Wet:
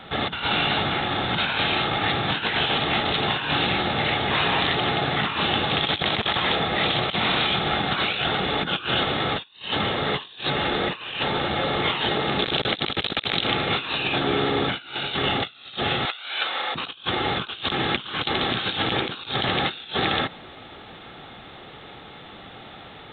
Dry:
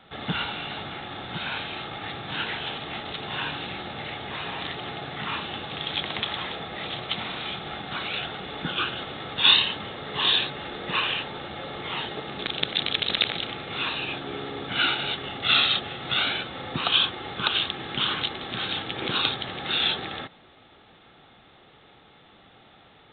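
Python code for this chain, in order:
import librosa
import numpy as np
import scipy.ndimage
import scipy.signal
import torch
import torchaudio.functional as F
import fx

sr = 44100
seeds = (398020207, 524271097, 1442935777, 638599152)

y = fx.highpass(x, sr, hz=760.0, slope=12, at=(16.05, 16.75))
y = fx.over_compress(y, sr, threshold_db=-33.0, ratio=-0.5)
y = y * librosa.db_to_amplitude(8.0)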